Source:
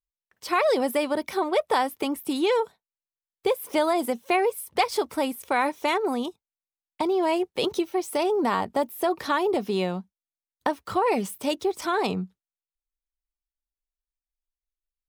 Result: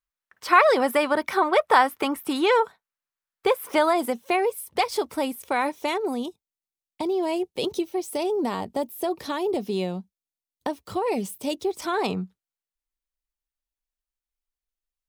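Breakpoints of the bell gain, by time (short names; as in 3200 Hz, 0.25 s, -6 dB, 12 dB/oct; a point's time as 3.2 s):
bell 1400 Hz 1.5 oct
3.6 s +10.5 dB
4.34 s -1.5 dB
5.62 s -1.5 dB
6.21 s -9 dB
11.49 s -9 dB
12.11 s +1.5 dB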